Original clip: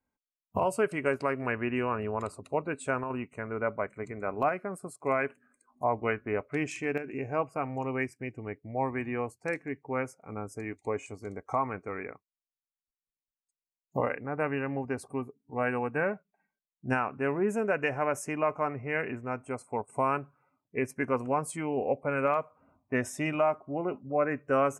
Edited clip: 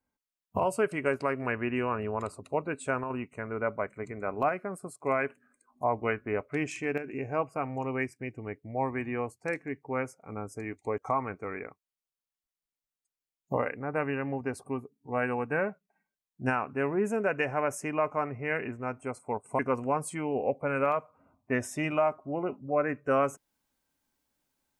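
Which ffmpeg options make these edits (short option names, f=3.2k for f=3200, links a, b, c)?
-filter_complex "[0:a]asplit=3[a][b][c];[a]atrim=end=10.982[d];[b]atrim=start=11.418:end=20.032[e];[c]atrim=start=21.008[f];[d][e]acrossfade=d=0.004:c1=hsin:c2=hsin[g];[g][f]acrossfade=d=0.004:c1=hsin:c2=hsin"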